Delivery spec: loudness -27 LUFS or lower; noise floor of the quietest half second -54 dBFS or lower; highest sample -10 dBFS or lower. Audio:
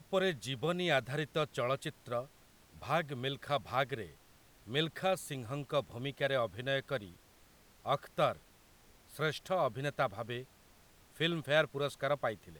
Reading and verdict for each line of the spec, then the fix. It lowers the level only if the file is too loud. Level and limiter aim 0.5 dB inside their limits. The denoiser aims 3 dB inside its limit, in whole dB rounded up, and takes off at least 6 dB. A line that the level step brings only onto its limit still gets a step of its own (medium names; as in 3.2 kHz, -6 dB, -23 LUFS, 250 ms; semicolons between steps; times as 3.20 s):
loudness -35.5 LUFS: pass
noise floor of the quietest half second -63 dBFS: pass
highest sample -16.0 dBFS: pass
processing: none needed